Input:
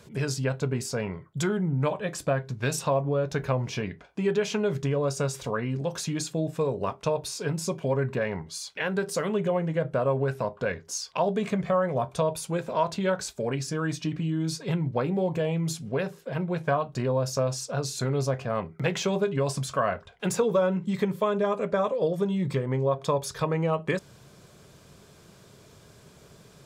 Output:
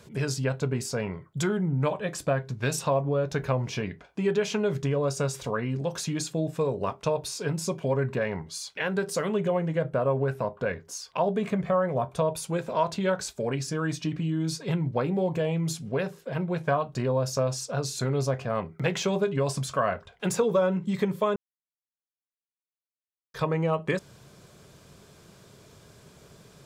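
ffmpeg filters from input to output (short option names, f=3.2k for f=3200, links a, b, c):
-filter_complex "[0:a]asettb=1/sr,asplit=3[a][b][c];[a]atrim=end=9.894[d];[b]atrim=start=9.89:end=12.35,asetpts=PTS-STARTPTS,afade=t=in:d=0.004:c=qsin,afade=t=out:st=2.456:d=0.004:c=qsin,equalizer=f=5.6k:t=o:w=1.8:g=-5.5[e];[c]atrim=start=12.346[f];[d][e]acrossfade=d=0.004:c1=hsin:c2=qsin[g];[g][f]acrossfade=d=0.004:c1=qsin:c2=hsin,asplit=3[h][i][j];[h]atrim=end=21.36,asetpts=PTS-STARTPTS,afade=t=out:st=21.356:d=0.004:c=hsin[k];[i]atrim=start=21.36:end=23.34,asetpts=PTS-STARTPTS,volume=0[l];[j]atrim=start=23.34,asetpts=PTS-STARTPTS,afade=t=in:d=0.004:c=hsin[m];[k][l][m]concat=n=3:v=0:a=1"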